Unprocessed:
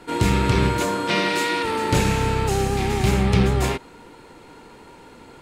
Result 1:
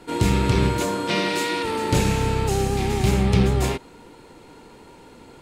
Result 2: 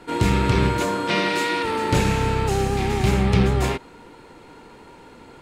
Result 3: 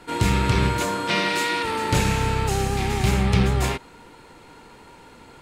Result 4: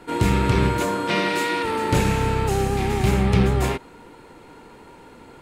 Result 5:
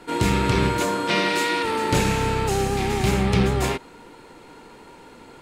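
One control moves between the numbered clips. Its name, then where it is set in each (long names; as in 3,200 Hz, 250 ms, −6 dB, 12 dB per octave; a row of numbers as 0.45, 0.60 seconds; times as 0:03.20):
parametric band, centre frequency: 1,500, 15,000, 350, 5,200, 76 Hertz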